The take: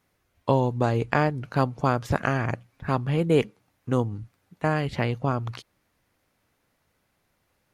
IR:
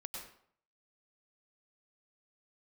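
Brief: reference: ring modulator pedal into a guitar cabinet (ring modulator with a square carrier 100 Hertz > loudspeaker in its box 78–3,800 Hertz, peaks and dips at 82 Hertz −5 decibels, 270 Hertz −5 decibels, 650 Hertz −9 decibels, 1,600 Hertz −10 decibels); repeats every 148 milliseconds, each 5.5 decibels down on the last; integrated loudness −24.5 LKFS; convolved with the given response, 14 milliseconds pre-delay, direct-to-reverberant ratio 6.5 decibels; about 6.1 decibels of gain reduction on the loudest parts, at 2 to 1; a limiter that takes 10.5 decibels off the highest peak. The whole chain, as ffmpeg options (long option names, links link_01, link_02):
-filter_complex "[0:a]acompressor=threshold=-27dB:ratio=2,alimiter=limit=-19dB:level=0:latency=1,aecho=1:1:148|296|444|592|740|888|1036:0.531|0.281|0.149|0.079|0.0419|0.0222|0.0118,asplit=2[link_01][link_02];[1:a]atrim=start_sample=2205,adelay=14[link_03];[link_02][link_03]afir=irnorm=-1:irlink=0,volume=-4.5dB[link_04];[link_01][link_04]amix=inputs=2:normalize=0,aeval=exprs='val(0)*sgn(sin(2*PI*100*n/s))':channel_layout=same,highpass=78,equalizer=frequency=82:width_type=q:width=4:gain=-5,equalizer=frequency=270:width_type=q:width=4:gain=-5,equalizer=frequency=650:width_type=q:width=4:gain=-9,equalizer=frequency=1600:width_type=q:width=4:gain=-10,lowpass=frequency=3800:width=0.5412,lowpass=frequency=3800:width=1.3066,volume=9dB"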